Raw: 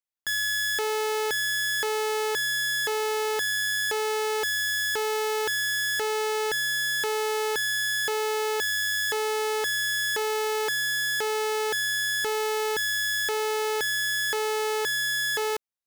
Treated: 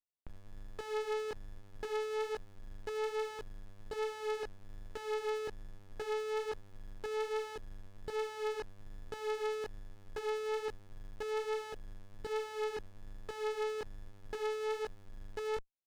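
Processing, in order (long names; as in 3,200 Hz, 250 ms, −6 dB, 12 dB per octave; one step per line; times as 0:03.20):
chorus effect 1.2 Hz, delay 17.5 ms, depth 4.2 ms
head-to-tape spacing loss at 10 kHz 21 dB
windowed peak hold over 33 samples
level −2 dB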